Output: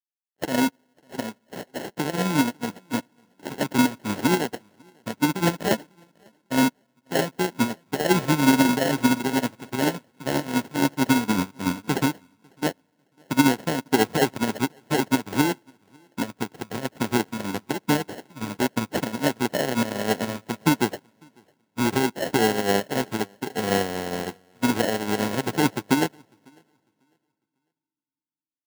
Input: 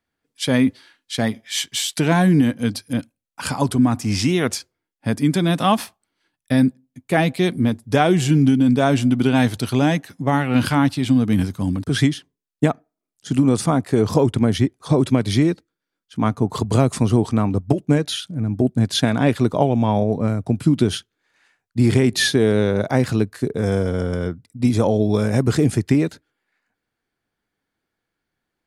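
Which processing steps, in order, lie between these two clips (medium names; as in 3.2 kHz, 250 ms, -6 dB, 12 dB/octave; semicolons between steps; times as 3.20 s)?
time-frequency box 15.10–15.32 s, 460–10000 Hz -7 dB; companded quantiser 4-bit; peak limiter -10.5 dBFS, peak gain reduction 10.5 dB; on a send at -19.5 dB: reverberation RT60 2.2 s, pre-delay 6 ms; on the sum: sample-rate reducer 1.2 kHz, jitter 0%; high-pass 200 Hz 12 dB/octave; feedback delay 549 ms, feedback 26%, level -13 dB; upward expansion 2.5:1, over -34 dBFS; trim +4.5 dB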